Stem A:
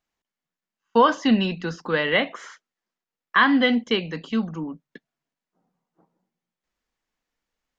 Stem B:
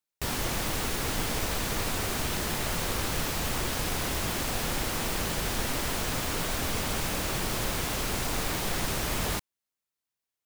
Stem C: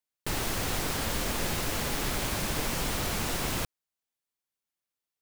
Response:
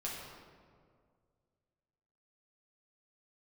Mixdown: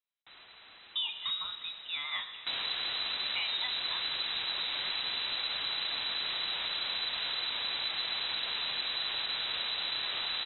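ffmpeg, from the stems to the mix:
-filter_complex "[0:a]volume=-15dB,asplit=2[a][b];[b]volume=-9dB[c];[1:a]asoftclip=type=tanh:threshold=-25.5dB,adelay=2250,volume=2dB[d];[2:a]tiltshelf=f=970:g=-4.5,asoftclip=type=tanh:threshold=-28.5dB,volume=-18dB[e];[3:a]atrim=start_sample=2205[f];[c][f]afir=irnorm=-1:irlink=0[g];[a][d][e][g]amix=inputs=4:normalize=0,lowpass=f=3.4k:t=q:w=0.5098,lowpass=f=3.4k:t=q:w=0.6013,lowpass=f=3.4k:t=q:w=0.9,lowpass=f=3.4k:t=q:w=2.563,afreqshift=-4000,acompressor=threshold=-32dB:ratio=3"

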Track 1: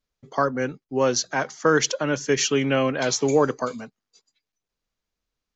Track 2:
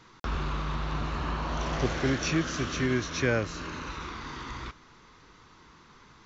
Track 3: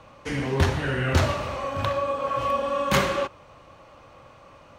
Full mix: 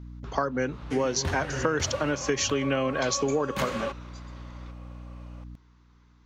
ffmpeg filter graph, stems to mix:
-filter_complex "[0:a]aeval=exprs='val(0)+0.00631*(sin(2*PI*60*n/s)+sin(2*PI*2*60*n/s)/2+sin(2*PI*3*60*n/s)/3+sin(2*PI*4*60*n/s)/4+sin(2*PI*5*60*n/s)/5)':c=same,volume=2.5dB,asplit=2[a][b];[1:a]aeval=exprs='val(0)+0.00631*(sin(2*PI*60*n/s)+sin(2*PI*2*60*n/s)/2+sin(2*PI*3*60*n/s)/3+sin(2*PI*4*60*n/s)/4+sin(2*PI*5*60*n/s)/5)':c=same,volume=-13dB[c];[2:a]adelay=650,volume=-5dB[d];[b]apad=whole_len=275702[e];[c][e]sidechaincompress=threshold=-32dB:ratio=4:attack=16:release=135[f];[a][f][d]amix=inputs=3:normalize=0,acompressor=threshold=-23dB:ratio=6"

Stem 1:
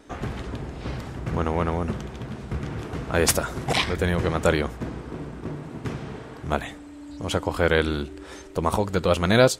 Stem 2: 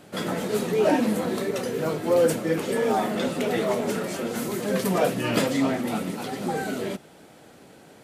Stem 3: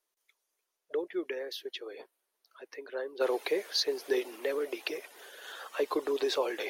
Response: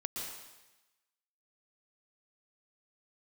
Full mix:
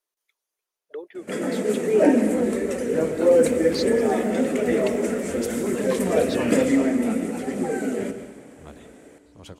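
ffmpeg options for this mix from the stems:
-filter_complex "[0:a]acrossover=split=480|3000[a][b][c];[b]acompressor=threshold=-32dB:ratio=6[d];[a][d][c]amix=inputs=3:normalize=0,adelay=2150,volume=-18.5dB,asplit=2[e][f];[f]volume=-5.5dB[g];[1:a]lowpass=12k,aphaser=in_gain=1:out_gain=1:delay=4.6:decay=0.26:speed=1.1:type=sinusoidal,equalizer=f=125:t=o:w=1:g=-3,equalizer=f=250:t=o:w=1:g=10,equalizer=f=500:t=o:w=1:g=9,equalizer=f=1k:t=o:w=1:g=-4,equalizer=f=2k:t=o:w=1:g=9,equalizer=f=4k:t=o:w=1:g=-9,equalizer=f=8k:t=o:w=1:g=11,adelay=1150,volume=-10dB,asplit=2[h][i];[i]volume=-5dB[j];[2:a]volume=-2.5dB[k];[3:a]atrim=start_sample=2205[l];[g][j]amix=inputs=2:normalize=0[m];[m][l]afir=irnorm=-1:irlink=0[n];[e][h][k][n]amix=inputs=4:normalize=0"

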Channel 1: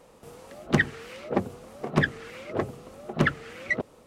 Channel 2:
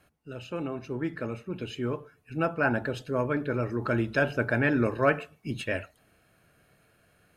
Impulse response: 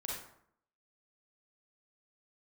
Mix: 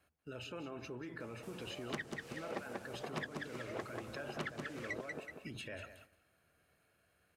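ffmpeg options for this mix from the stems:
-filter_complex "[0:a]adelay=1200,volume=-5.5dB,asplit=2[a][b];[b]volume=-5.5dB[c];[1:a]acompressor=threshold=-31dB:ratio=6,equalizer=f=75:w=2.5:g=12,alimiter=level_in=9dB:limit=-24dB:level=0:latency=1:release=50,volume=-9dB,volume=-0.5dB,asplit=2[d][e];[e]volume=-13dB[f];[c][f]amix=inputs=2:normalize=0,aecho=0:1:187|374|561|748:1|0.31|0.0961|0.0298[g];[a][d][g]amix=inputs=3:normalize=0,agate=range=-9dB:threshold=-57dB:ratio=16:detection=peak,lowshelf=f=190:g=-10,acrossover=split=1100|4100[h][i][j];[h]acompressor=threshold=-42dB:ratio=4[k];[i]acompressor=threshold=-47dB:ratio=4[l];[j]acompressor=threshold=-54dB:ratio=4[m];[k][l][m]amix=inputs=3:normalize=0"

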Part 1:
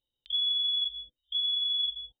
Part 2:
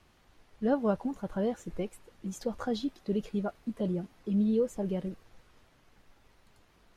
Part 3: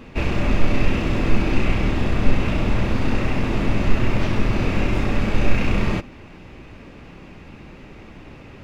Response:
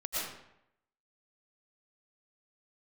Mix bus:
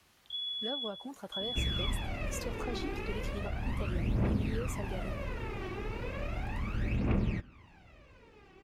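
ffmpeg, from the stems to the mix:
-filter_complex "[0:a]volume=-9.5dB[a];[1:a]highshelf=f=3.6k:g=-10.5,acrossover=split=310|900[b][c][d];[b]acompressor=threshold=-45dB:ratio=4[e];[c]acompressor=threshold=-37dB:ratio=4[f];[d]acompressor=threshold=-50dB:ratio=4[g];[e][f][g]amix=inputs=3:normalize=0,crystalizer=i=8:c=0,volume=-5dB[h];[2:a]aphaser=in_gain=1:out_gain=1:delay=2.7:decay=0.72:speed=0.35:type=triangular,adynamicequalizer=threshold=0.00794:dfrequency=3500:dqfactor=0.7:tfrequency=3500:tqfactor=0.7:attack=5:release=100:ratio=0.375:range=3.5:mode=cutabove:tftype=highshelf,adelay=1400,volume=-17dB[i];[a][h][i]amix=inputs=3:normalize=0,highpass=46"

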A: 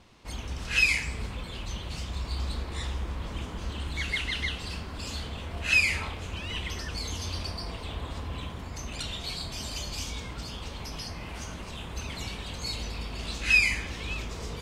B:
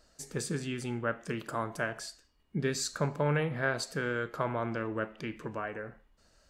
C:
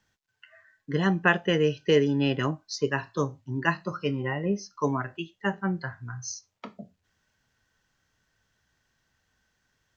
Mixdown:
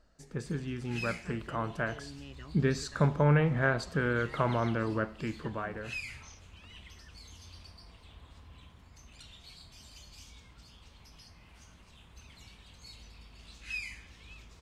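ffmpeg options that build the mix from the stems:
-filter_complex "[0:a]adelay=200,volume=-16.5dB[a];[1:a]lowpass=f=1.1k:p=1,dynaudnorm=f=740:g=5:m=6dB,volume=2dB[b];[2:a]alimiter=limit=-17.5dB:level=0:latency=1,volume=-19dB[c];[a][b][c]amix=inputs=3:normalize=0,equalizer=f=460:t=o:w=2:g=-5.5"

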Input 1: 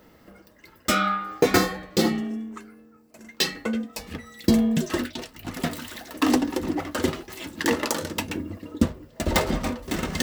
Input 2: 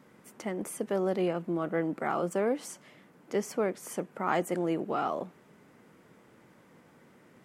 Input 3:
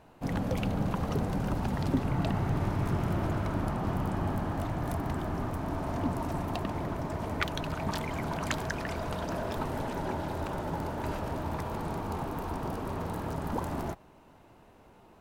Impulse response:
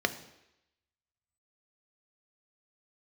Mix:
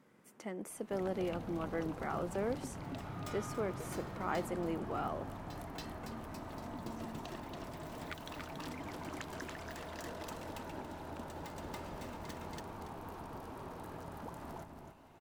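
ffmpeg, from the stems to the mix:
-filter_complex "[0:a]acompressor=threshold=-27dB:ratio=3,adelay=2100,volume=-13.5dB,asplit=2[a][b];[b]volume=-7dB[c];[1:a]volume=-8dB,asplit=2[d][e];[2:a]adelay=700,volume=-3dB,asplit=2[f][g];[g]volume=-15.5dB[h];[e]apad=whole_len=543356[i];[a][i]sidechaincompress=threshold=-52dB:ratio=8:attack=16:release=557[j];[j][f]amix=inputs=2:normalize=0,lowshelf=f=250:g=-8,acompressor=threshold=-51dB:ratio=2,volume=0dB[k];[c][h]amix=inputs=2:normalize=0,aecho=0:1:281|562|843|1124:1|0.25|0.0625|0.0156[l];[d][k][l]amix=inputs=3:normalize=0"

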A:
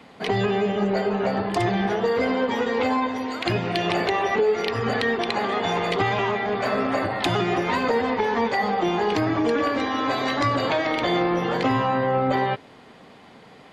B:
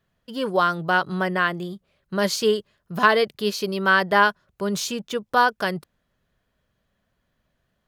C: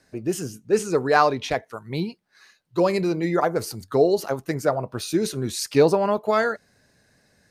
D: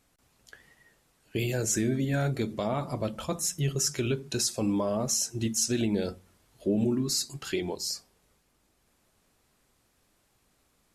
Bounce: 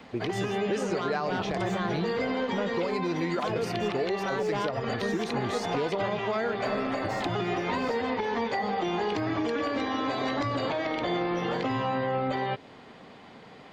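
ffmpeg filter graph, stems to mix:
-filter_complex "[0:a]volume=-1dB[a];[1:a]lowpass=f=1.4k:w=0.5412,lowpass=f=1.4k:w=1.3066,asoftclip=type=tanh:threshold=-18dB,adelay=400,volume=1.5dB[b];[2:a]highshelf=f=6.3k:g=-10.5,volume=2dB[c];[3:a]aeval=exprs='if(lt(val(0),0),0.447*val(0),val(0))':c=same,volume=-15dB[d];[a][b][c][d]amix=inputs=4:normalize=0,equalizer=f=11k:w=1.5:g=-11.5,acrossover=split=970|2100[e][f][g];[e]acompressor=threshold=-27dB:ratio=4[h];[f]acompressor=threshold=-40dB:ratio=4[i];[g]acompressor=threshold=-39dB:ratio=4[j];[h][i][j]amix=inputs=3:normalize=0,alimiter=limit=-19.5dB:level=0:latency=1:release=110"

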